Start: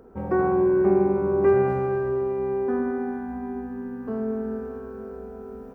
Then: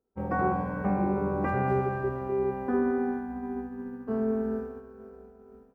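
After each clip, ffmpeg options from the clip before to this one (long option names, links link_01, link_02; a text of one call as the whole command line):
ffmpeg -i in.wav -af "agate=range=-33dB:threshold=-28dB:ratio=3:detection=peak,afftfilt=real='re*lt(hypot(re,im),0.708)':imag='im*lt(hypot(re,im),0.708)':win_size=1024:overlap=0.75" out.wav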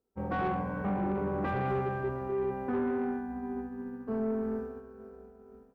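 ffmpeg -i in.wav -af "asoftclip=type=tanh:threshold=-23.5dB,volume=-1.5dB" out.wav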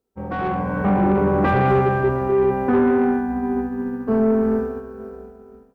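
ffmpeg -i in.wav -af "dynaudnorm=framelen=190:gausssize=7:maxgain=9.5dB,volume=4.5dB" out.wav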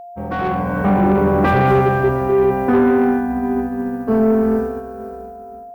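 ffmpeg -i in.wav -af "crystalizer=i=1.5:c=0,aeval=exprs='val(0)+0.0158*sin(2*PI*700*n/s)':channel_layout=same,volume=3dB" out.wav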